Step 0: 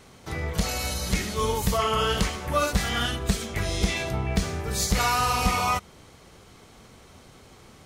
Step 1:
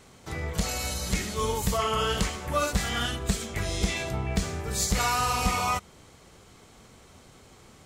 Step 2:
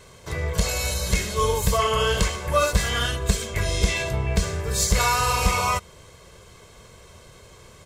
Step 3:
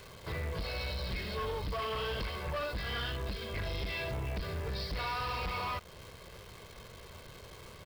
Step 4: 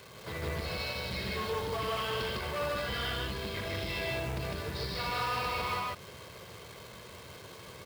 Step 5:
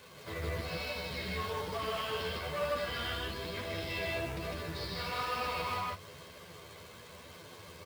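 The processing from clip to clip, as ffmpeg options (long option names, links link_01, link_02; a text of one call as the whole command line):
ffmpeg -i in.wav -af "equalizer=frequency=7500:width=4.4:gain=5.5,volume=-2.5dB" out.wav
ffmpeg -i in.wav -af "aecho=1:1:1.9:0.6,volume=3.5dB" out.wav
ffmpeg -i in.wav -af "acompressor=threshold=-29dB:ratio=2,aresample=11025,asoftclip=type=tanh:threshold=-29.5dB,aresample=44100,acrusher=bits=9:dc=4:mix=0:aa=0.000001,volume=-2.5dB" out.wav
ffmpeg -i in.wav -af "highpass=100,acrusher=bits=4:mode=log:mix=0:aa=0.000001,aecho=1:1:78.72|154.5:0.355|1" out.wav
ffmpeg -i in.wav -filter_complex "[0:a]flanger=delay=3.3:depth=8.3:regen=44:speed=1.1:shape=triangular,asplit=2[link_01][link_02];[link_02]adelay=12,volume=-4dB[link_03];[link_01][link_03]amix=inputs=2:normalize=0" out.wav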